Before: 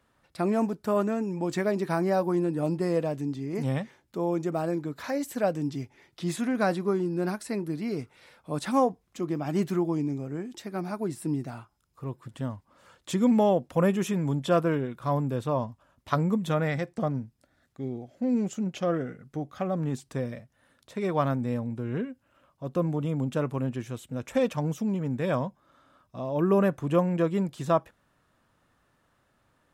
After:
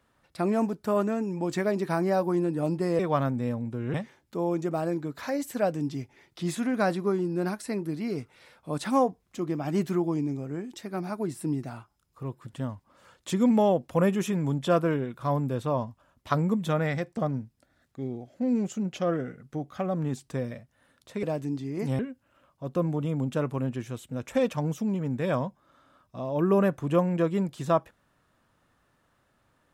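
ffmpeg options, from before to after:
ffmpeg -i in.wav -filter_complex "[0:a]asplit=5[link_01][link_02][link_03][link_04][link_05];[link_01]atrim=end=2.992[link_06];[link_02]atrim=start=21.038:end=21.992[link_07];[link_03]atrim=start=3.748:end=21.042[link_08];[link_04]atrim=start=2.988:end=3.752[link_09];[link_05]atrim=start=21.988[link_10];[link_06][link_07]acrossfade=duration=0.004:curve1=hsin:curve2=hsin[link_11];[link_11][link_08]acrossfade=duration=0.004:curve1=hsin:curve2=hsin[link_12];[link_12][link_09]acrossfade=duration=0.004:curve1=hsin:curve2=hsin[link_13];[link_13][link_10]acrossfade=duration=0.004:curve1=hsin:curve2=hsin" out.wav

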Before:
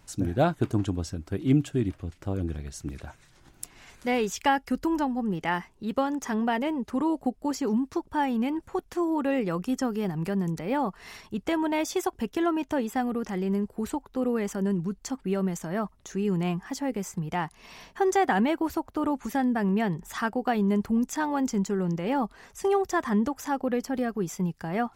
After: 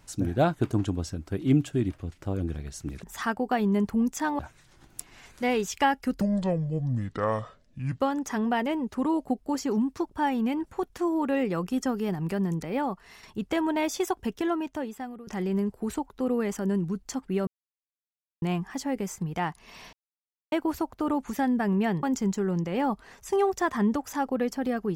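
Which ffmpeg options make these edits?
ffmpeg -i in.wav -filter_complex "[0:a]asplit=12[link_01][link_02][link_03][link_04][link_05][link_06][link_07][link_08][link_09][link_10][link_11][link_12];[link_01]atrim=end=3.032[link_13];[link_02]atrim=start=19.988:end=21.352[link_14];[link_03]atrim=start=3.028:end=4.854[link_15];[link_04]atrim=start=4.85:end=5.96,asetpts=PTS-STARTPTS,asetrate=27342,aresample=44100,atrim=end_sample=78953,asetpts=PTS-STARTPTS[link_16];[link_05]atrim=start=5.956:end=11.19,asetpts=PTS-STARTPTS,afade=type=out:start_time=4.644:duration=0.59:silence=0.421697[link_17];[link_06]atrim=start=11.19:end=13.23,asetpts=PTS-STARTPTS,afade=type=in:duration=0.004:curve=hsin:silence=0.421697,afade=type=out:start_time=1.03:duration=1.01:silence=0.141254[link_18];[link_07]atrim=start=13.23:end=15.43,asetpts=PTS-STARTPTS,afade=type=in:duration=0.004:curve=hsin:silence=0.141254,afade=type=out:start_time=2.196:duration=0.004:curve=hsin[link_19];[link_08]atrim=start=15.43:end=16.38,asetpts=PTS-STARTPTS,volume=0[link_20];[link_09]atrim=start=16.38:end=17.89,asetpts=PTS-STARTPTS,afade=type=in:duration=0.004:curve=hsin,afade=type=out:start_time=1.506:duration=0.004:curve=hsin[link_21];[link_10]atrim=start=17.89:end=18.48,asetpts=PTS-STARTPTS,volume=0[link_22];[link_11]atrim=start=18.48:end=19.992,asetpts=PTS-STARTPTS,afade=type=in:duration=0.004:curve=hsin[link_23];[link_12]atrim=start=21.348[link_24];[link_13][link_14]acrossfade=duration=0.004:curve1=hsin:curve2=hsin[link_25];[link_25][link_15]acrossfade=duration=0.004:curve1=hsin:curve2=hsin[link_26];[link_26][link_16]acrossfade=duration=0.004:curve1=hsin:curve2=hsin[link_27];[link_17][link_18][link_19][link_20][link_21][link_22][link_23]concat=n=7:v=0:a=1[link_28];[link_27][link_28]acrossfade=duration=0.004:curve1=hsin:curve2=hsin[link_29];[link_29][link_24]acrossfade=duration=0.004:curve1=hsin:curve2=hsin" out.wav

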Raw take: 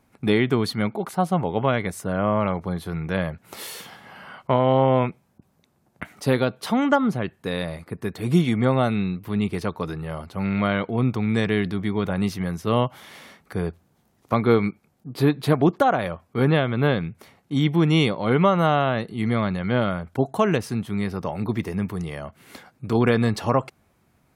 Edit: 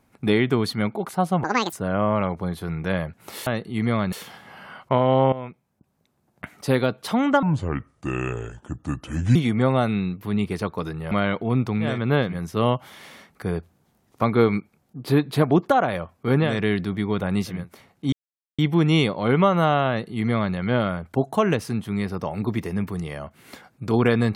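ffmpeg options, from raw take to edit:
ffmpeg -i in.wav -filter_complex "[0:a]asplit=14[link_01][link_02][link_03][link_04][link_05][link_06][link_07][link_08][link_09][link_10][link_11][link_12][link_13][link_14];[link_01]atrim=end=1.444[link_15];[link_02]atrim=start=1.44:end=1.97,asetpts=PTS-STARTPTS,asetrate=82026,aresample=44100,atrim=end_sample=12566,asetpts=PTS-STARTPTS[link_16];[link_03]atrim=start=1.966:end=3.712[link_17];[link_04]atrim=start=18.898:end=19.562[link_18];[link_05]atrim=start=3.708:end=4.91,asetpts=PTS-STARTPTS,afade=type=out:start_time=1.198:duration=0.004:curve=hsin:silence=0.16788[link_19];[link_06]atrim=start=4.91:end=7.014,asetpts=PTS-STARTPTS,afade=type=in:duration=1.42:silence=0.16788[link_20];[link_07]atrim=start=7.01:end=8.38,asetpts=PTS-STARTPTS,asetrate=31311,aresample=44100,atrim=end_sample=85094,asetpts=PTS-STARTPTS[link_21];[link_08]atrim=start=8.376:end=10.142[link_22];[link_09]atrim=start=10.588:end=11.49[link_23];[link_10]atrim=start=16.49:end=17.17[link_24];[link_11]atrim=start=12.32:end=16.73[link_25];[link_12]atrim=start=11.25:end=12.56[link_26];[link_13]atrim=start=16.93:end=17.6,asetpts=PTS-STARTPTS,afade=type=out:start_time=0.666:duration=0.004:curve=hsin,apad=pad_dur=0.46[link_27];[link_14]atrim=start=17.6,asetpts=PTS-STARTPTS,afade=type=in:duration=0.004:curve=hsin[link_28];[link_15][link_16]acrossfade=duration=0.004:curve1=hsin:curve2=hsin[link_29];[link_29][link_17]acrossfade=duration=0.004:curve1=hsin:curve2=hsin[link_30];[link_30][link_18]acrossfade=duration=0.004:curve1=hsin:curve2=hsin[link_31];[link_19][link_20]concat=n=2:v=0:a=1[link_32];[link_31][link_32]acrossfade=duration=0.004:curve1=hsin:curve2=hsin[link_33];[link_33][link_21]acrossfade=duration=0.004:curve1=hsin:curve2=hsin[link_34];[link_34][link_22]acrossfade=duration=0.004:curve1=hsin:curve2=hsin[link_35];[link_35][link_23]acrossfade=duration=0.004:curve1=hsin:curve2=hsin[link_36];[link_36][link_24]acrossfade=duration=0.24:curve1=tri:curve2=tri[link_37];[link_37][link_25]acrossfade=duration=0.24:curve1=tri:curve2=tri[link_38];[link_38][link_26]acrossfade=duration=0.24:curve1=tri:curve2=tri[link_39];[link_27][link_28]concat=n=2:v=0:a=1[link_40];[link_39][link_40]acrossfade=duration=0.24:curve1=tri:curve2=tri" out.wav

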